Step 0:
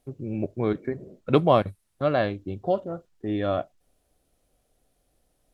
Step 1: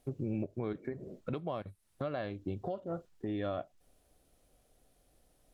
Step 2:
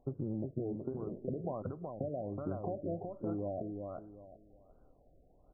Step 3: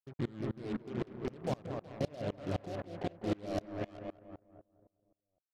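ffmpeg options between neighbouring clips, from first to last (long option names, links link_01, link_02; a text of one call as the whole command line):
ffmpeg -i in.wav -af "acompressor=threshold=-33dB:ratio=4,alimiter=level_in=2.5dB:limit=-24dB:level=0:latency=1:release=281,volume=-2.5dB,volume=1dB" out.wav
ffmpeg -i in.wav -filter_complex "[0:a]acompressor=threshold=-38dB:ratio=4,asplit=2[link_01][link_02];[link_02]adelay=372,lowpass=frequency=2000:poles=1,volume=-4.5dB,asplit=2[link_03][link_04];[link_04]adelay=372,lowpass=frequency=2000:poles=1,volume=0.28,asplit=2[link_05][link_06];[link_06]adelay=372,lowpass=frequency=2000:poles=1,volume=0.28,asplit=2[link_07][link_08];[link_08]adelay=372,lowpass=frequency=2000:poles=1,volume=0.28[link_09];[link_03][link_05][link_07][link_09]amix=inputs=4:normalize=0[link_10];[link_01][link_10]amix=inputs=2:normalize=0,afftfilt=real='re*lt(b*sr/1024,710*pow(1600/710,0.5+0.5*sin(2*PI*1.3*pts/sr)))':imag='im*lt(b*sr/1024,710*pow(1600/710,0.5+0.5*sin(2*PI*1.3*pts/sr)))':win_size=1024:overlap=0.75,volume=3.5dB" out.wav
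ffmpeg -i in.wav -filter_complex "[0:a]acrusher=bits=6:mix=0:aa=0.5,asplit=2[link_01][link_02];[link_02]adelay=202,lowpass=frequency=1400:poles=1,volume=-3.5dB,asplit=2[link_03][link_04];[link_04]adelay=202,lowpass=frequency=1400:poles=1,volume=0.52,asplit=2[link_05][link_06];[link_06]adelay=202,lowpass=frequency=1400:poles=1,volume=0.52,asplit=2[link_07][link_08];[link_08]adelay=202,lowpass=frequency=1400:poles=1,volume=0.52,asplit=2[link_09][link_10];[link_10]adelay=202,lowpass=frequency=1400:poles=1,volume=0.52,asplit=2[link_11][link_12];[link_12]adelay=202,lowpass=frequency=1400:poles=1,volume=0.52,asplit=2[link_13][link_14];[link_14]adelay=202,lowpass=frequency=1400:poles=1,volume=0.52[link_15];[link_01][link_03][link_05][link_07][link_09][link_11][link_13][link_15]amix=inputs=8:normalize=0,aeval=exprs='val(0)*pow(10,-28*if(lt(mod(-3.9*n/s,1),2*abs(-3.9)/1000),1-mod(-3.9*n/s,1)/(2*abs(-3.9)/1000),(mod(-3.9*n/s,1)-2*abs(-3.9)/1000)/(1-2*abs(-3.9)/1000))/20)':channel_layout=same,volume=6.5dB" out.wav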